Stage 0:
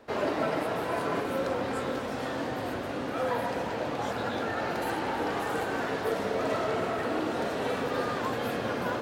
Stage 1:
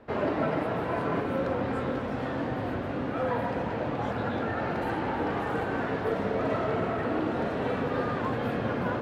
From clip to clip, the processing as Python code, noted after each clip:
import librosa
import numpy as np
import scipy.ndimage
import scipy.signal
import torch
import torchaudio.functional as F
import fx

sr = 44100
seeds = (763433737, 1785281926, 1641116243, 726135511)

y = fx.bass_treble(x, sr, bass_db=7, treble_db=-15)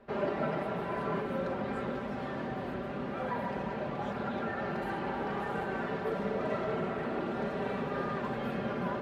y = x + 0.65 * np.pad(x, (int(5.1 * sr / 1000.0), 0))[:len(x)]
y = y * librosa.db_to_amplitude(-6.0)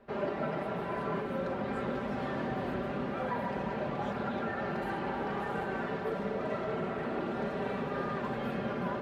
y = fx.rider(x, sr, range_db=10, speed_s=0.5)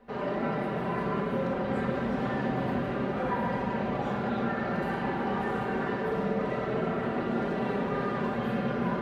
y = fx.room_shoebox(x, sr, seeds[0], volume_m3=1200.0, walls='mixed', distance_m=1.9)